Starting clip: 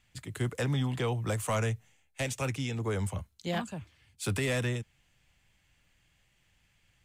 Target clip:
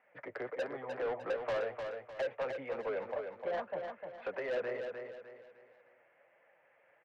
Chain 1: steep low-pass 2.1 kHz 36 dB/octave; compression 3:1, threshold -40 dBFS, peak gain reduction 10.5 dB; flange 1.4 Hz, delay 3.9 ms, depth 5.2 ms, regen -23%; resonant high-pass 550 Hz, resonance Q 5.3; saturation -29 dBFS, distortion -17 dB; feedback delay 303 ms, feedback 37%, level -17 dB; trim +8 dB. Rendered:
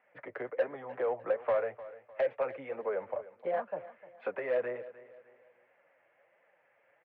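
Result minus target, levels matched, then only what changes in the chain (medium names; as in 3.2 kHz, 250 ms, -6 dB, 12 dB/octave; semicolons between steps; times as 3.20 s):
echo-to-direct -11 dB; saturation: distortion -10 dB
change: saturation -39.5 dBFS, distortion -7 dB; change: feedback delay 303 ms, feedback 37%, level -6 dB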